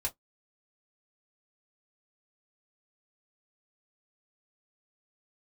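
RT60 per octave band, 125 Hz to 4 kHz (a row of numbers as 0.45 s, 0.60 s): 0.15 s, 0.15 s, 0.10 s, 0.10 s, 0.10 s, 0.10 s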